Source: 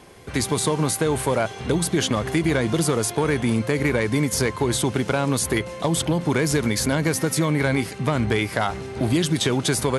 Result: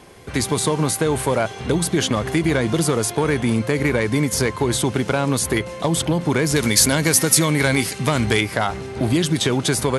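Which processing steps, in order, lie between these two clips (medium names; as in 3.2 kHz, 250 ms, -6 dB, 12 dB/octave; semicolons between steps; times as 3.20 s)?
6.56–8.41 s: treble shelf 2.9 kHz +11 dB; trim +2 dB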